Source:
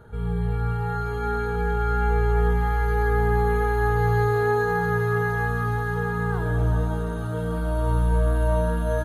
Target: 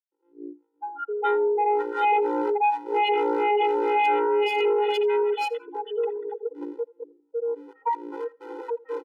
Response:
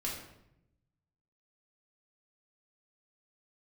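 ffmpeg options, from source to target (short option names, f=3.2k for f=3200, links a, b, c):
-filter_complex "[0:a]lowpass=f=2.6k:w=0.5412,lowpass=f=2.6k:w=1.3066,bandreject=f=128.9:t=h:w=4,bandreject=f=257.8:t=h:w=4,bandreject=f=386.7:t=h:w=4,bandreject=f=515.6:t=h:w=4,afftfilt=real='re*gte(hypot(re,im),0.251)':imag='im*gte(hypot(re,im),0.251)':win_size=1024:overlap=0.75,asplit=2[a][b];[b]highpass=f=720:p=1,volume=13dB,asoftclip=type=tanh:threshold=-10.5dB[c];[a][c]amix=inputs=2:normalize=0,lowpass=f=1k:p=1,volume=-6dB,aecho=1:1:2.3:0.46,acontrast=33,acrossover=split=470[d][e];[d]aeval=exprs='val(0)*(1-1/2+1/2*cos(2*PI*2.1*n/s))':c=same[f];[e]aeval=exprs='val(0)*(1-1/2-1/2*cos(2*PI*2.1*n/s))':c=same[g];[f][g]amix=inputs=2:normalize=0,aresample=8000,aeval=exprs='0.355*sin(PI/2*3.16*val(0)/0.355)':c=same,aresample=44100,asubboost=boost=3.5:cutoff=54,volume=7dB,asoftclip=hard,volume=-7dB,aecho=1:1:83|166:0.0708|0.012,afftfilt=real='re*eq(mod(floor(b*sr/1024/260),2),1)':imag='im*eq(mod(floor(b*sr/1024/260),2),1)':win_size=1024:overlap=0.75,volume=-8dB"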